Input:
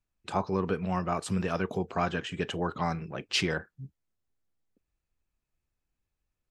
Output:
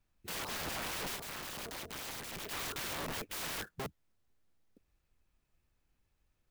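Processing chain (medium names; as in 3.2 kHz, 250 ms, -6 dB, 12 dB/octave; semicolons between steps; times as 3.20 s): 3.27–3.69 s: bass shelf 120 Hz +5 dB; peak limiter -23.5 dBFS, peak gain reduction 9.5 dB; integer overflow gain 40.5 dB; 1.16–2.51 s: AM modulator 220 Hz, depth 85%; sampling jitter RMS 0.027 ms; trim +6.5 dB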